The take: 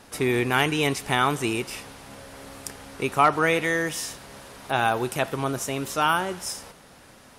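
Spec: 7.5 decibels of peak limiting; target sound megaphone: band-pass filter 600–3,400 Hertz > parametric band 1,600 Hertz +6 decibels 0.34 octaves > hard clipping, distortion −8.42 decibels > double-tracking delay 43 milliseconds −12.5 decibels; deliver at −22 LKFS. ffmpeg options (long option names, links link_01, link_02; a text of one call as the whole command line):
ffmpeg -i in.wav -filter_complex "[0:a]alimiter=limit=-15dB:level=0:latency=1,highpass=600,lowpass=3400,equalizer=frequency=1600:width_type=o:width=0.34:gain=6,asoftclip=type=hard:threshold=-25dB,asplit=2[link_01][link_02];[link_02]adelay=43,volume=-12.5dB[link_03];[link_01][link_03]amix=inputs=2:normalize=0,volume=9dB" out.wav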